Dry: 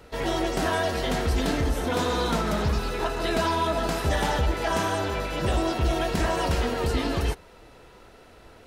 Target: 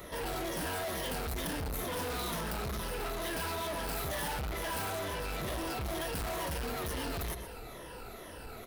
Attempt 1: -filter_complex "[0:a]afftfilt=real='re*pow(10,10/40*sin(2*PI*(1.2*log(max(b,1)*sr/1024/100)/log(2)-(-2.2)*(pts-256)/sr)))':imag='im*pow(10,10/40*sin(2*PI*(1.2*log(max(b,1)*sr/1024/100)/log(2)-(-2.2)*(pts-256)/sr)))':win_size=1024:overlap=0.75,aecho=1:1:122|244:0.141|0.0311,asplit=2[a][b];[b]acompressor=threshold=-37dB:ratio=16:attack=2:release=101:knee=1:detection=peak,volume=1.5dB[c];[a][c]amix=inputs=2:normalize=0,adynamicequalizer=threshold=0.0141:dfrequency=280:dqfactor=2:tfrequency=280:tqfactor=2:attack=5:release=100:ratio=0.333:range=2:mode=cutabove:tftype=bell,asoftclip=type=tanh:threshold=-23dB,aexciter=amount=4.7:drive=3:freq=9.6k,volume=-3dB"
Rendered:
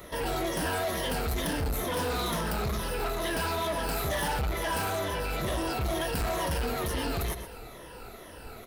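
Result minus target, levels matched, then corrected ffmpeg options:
compressor: peak gain reduction -6.5 dB; soft clip: distortion -5 dB
-filter_complex "[0:a]afftfilt=real='re*pow(10,10/40*sin(2*PI*(1.2*log(max(b,1)*sr/1024/100)/log(2)-(-2.2)*(pts-256)/sr)))':imag='im*pow(10,10/40*sin(2*PI*(1.2*log(max(b,1)*sr/1024/100)/log(2)-(-2.2)*(pts-256)/sr)))':win_size=1024:overlap=0.75,aecho=1:1:122|244:0.141|0.0311,asplit=2[a][b];[b]acompressor=threshold=-44dB:ratio=16:attack=2:release=101:knee=1:detection=peak,volume=1.5dB[c];[a][c]amix=inputs=2:normalize=0,adynamicequalizer=threshold=0.0141:dfrequency=280:dqfactor=2:tfrequency=280:tqfactor=2:attack=5:release=100:ratio=0.333:range=2:mode=cutabove:tftype=bell,asoftclip=type=tanh:threshold=-31.5dB,aexciter=amount=4.7:drive=3:freq=9.6k,volume=-3dB"

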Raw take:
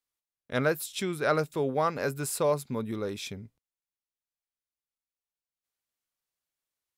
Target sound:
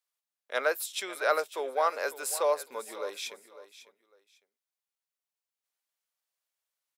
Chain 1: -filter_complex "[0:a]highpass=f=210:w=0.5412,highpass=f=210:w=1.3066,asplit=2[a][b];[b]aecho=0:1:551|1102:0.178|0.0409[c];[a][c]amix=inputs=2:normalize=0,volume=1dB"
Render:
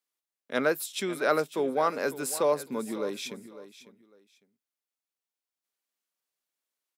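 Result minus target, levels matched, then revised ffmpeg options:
250 Hz band +15.0 dB
-filter_complex "[0:a]highpass=f=500:w=0.5412,highpass=f=500:w=1.3066,asplit=2[a][b];[b]aecho=0:1:551|1102:0.178|0.0409[c];[a][c]amix=inputs=2:normalize=0,volume=1dB"

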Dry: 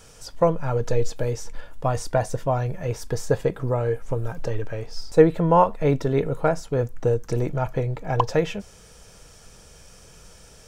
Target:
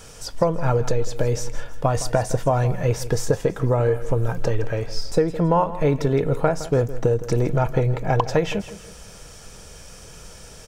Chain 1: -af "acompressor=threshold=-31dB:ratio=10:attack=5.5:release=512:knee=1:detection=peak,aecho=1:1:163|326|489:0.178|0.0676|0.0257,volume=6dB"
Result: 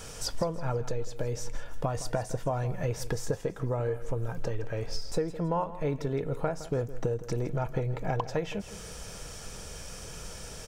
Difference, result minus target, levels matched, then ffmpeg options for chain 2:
compressor: peak gain reduction +11 dB
-af "acompressor=threshold=-19dB:ratio=10:attack=5.5:release=512:knee=1:detection=peak,aecho=1:1:163|326|489:0.178|0.0676|0.0257,volume=6dB"

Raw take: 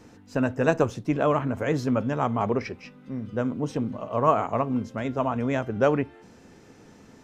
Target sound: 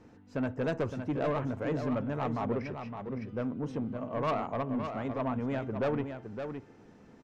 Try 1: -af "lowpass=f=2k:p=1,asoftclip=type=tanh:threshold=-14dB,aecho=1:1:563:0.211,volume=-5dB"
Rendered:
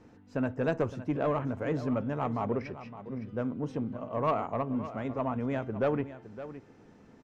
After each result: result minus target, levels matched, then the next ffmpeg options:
soft clip: distortion -6 dB; echo-to-direct -6 dB
-af "lowpass=f=2k:p=1,asoftclip=type=tanh:threshold=-20dB,aecho=1:1:563:0.211,volume=-5dB"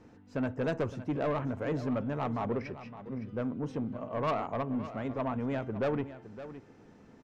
echo-to-direct -6 dB
-af "lowpass=f=2k:p=1,asoftclip=type=tanh:threshold=-20dB,aecho=1:1:563:0.422,volume=-5dB"

